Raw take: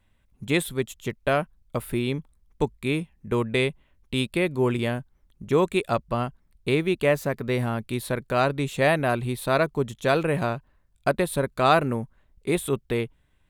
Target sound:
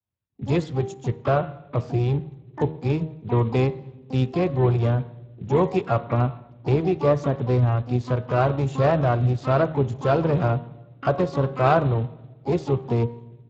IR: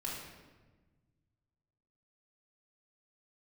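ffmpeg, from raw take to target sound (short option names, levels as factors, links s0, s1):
-filter_complex "[0:a]highpass=f=49:w=0.5412,highpass=f=49:w=1.3066,bandreject=f=78.7:t=h:w=4,bandreject=f=157.4:t=h:w=4,bandreject=f=236.1:t=h:w=4,bandreject=f=314.8:t=h:w=4,bandreject=f=393.5:t=h:w=4,bandreject=f=472.2:t=h:w=4,bandreject=f=550.9:t=h:w=4,bandreject=f=629.6:t=h:w=4,bandreject=f=708.3:t=h:w=4,bandreject=f=787:t=h:w=4,bandreject=f=865.7:t=h:w=4,bandreject=f=944.4:t=h:w=4,bandreject=f=1023.1:t=h:w=4,bandreject=f=1101.8:t=h:w=4,bandreject=f=1180.5:t=h:w=4,bandreject=f=1259.2:t=h:w=4,bandreject=f=1337.9:t=h:w=4,bandreject=f=1416.6:t=h:w=4,bandreject=f=1495.3:t=h:w=4,bandreject=f=1574:t=h:w=4,bandreject=f=1652.7:t=h:w=4,bandreject=f=1731.4:t=h:w=4,bandreject=f=1810.1:t=h:w=4,bandreject=f=1888.8:t=h:w=4,bandreject=f=1967.5:t=h:w=4,bandreject=f=2046.2:t=h:w=4,bandreject=f=2124.9:t=h:w=4,agate=range=0.0224:threshold=0.00224:ratio=3:detection=peak,equalizer=f=125:t=o:w=1:g=6,equalizer=f=250:t=o:w=1:g=-8,equalizer=f=2000:t=o:w=1:g=-12,equalizer=f=4000:t=o:w=1:g=-11,asplit=2[s0][s1];[s1]alimiter=limit=0.0944:level=0:latency=1:release=135,volume=0.75[s2];[s0][s2]amix=inputs=2:normalize=0,asplit=4[s3][s4][s5][s6];[s4]asetrate=22050,aresample=44100,atempo=2,volume=0.178[s7];[s5]asetrate=37084,aresample=44100,atempo=1.18921,volume=0.178[s8];[s6]asetrate=88200,aresample=44100,atempo=0.5,volume=0.251[s9];[s3][s7][s8][s9]amix=inputs=4:normalize=0,asplit=2[s10][s11];[1:a]atrim=start_sample=2205[s12];[s11][s12]afir=irnorm=-1:irlink=0,volume=0.119[s13];[s10][s13]amix=inputs=2:normalize=0" -ar 16000 -c:a libspeex -b:a 21k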